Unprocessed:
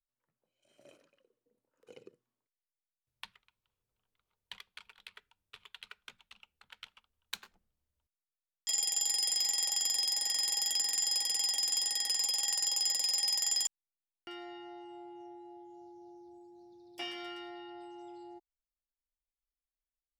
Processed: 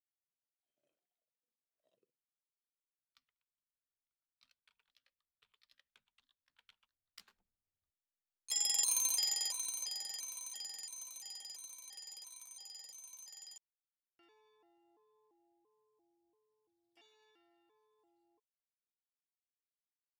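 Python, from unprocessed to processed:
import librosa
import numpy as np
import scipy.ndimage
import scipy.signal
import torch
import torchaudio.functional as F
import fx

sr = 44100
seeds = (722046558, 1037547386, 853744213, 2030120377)

y = fx.pitch_trill(x, sr, semitones=4.0, every_ms=334)
y = fx.doppler_pass(y, sr, speed_mps=7, closest_m=2.4, pass_at_s=8.9)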